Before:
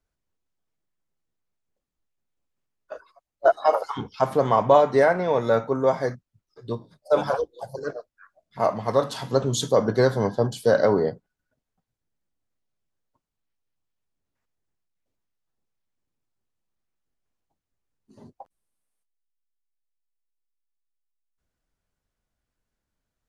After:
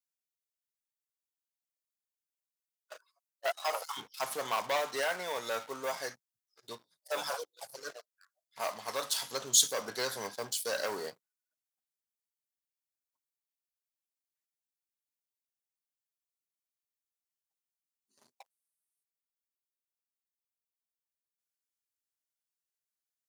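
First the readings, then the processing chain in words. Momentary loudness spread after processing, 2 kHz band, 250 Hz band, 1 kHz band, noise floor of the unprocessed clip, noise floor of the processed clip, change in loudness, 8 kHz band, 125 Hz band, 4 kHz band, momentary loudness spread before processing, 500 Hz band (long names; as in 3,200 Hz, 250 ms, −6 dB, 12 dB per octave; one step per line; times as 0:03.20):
16 LU, −6.0 dB, −22.0 dB, −12.5 dB, −84 dBFS, below −85 dBFS, −11.0 dB, +7.0 dB, −28.0 dB, +1.5 dB, 15 LU, −17.0 dB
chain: leveller curve on the samples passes 2
first difference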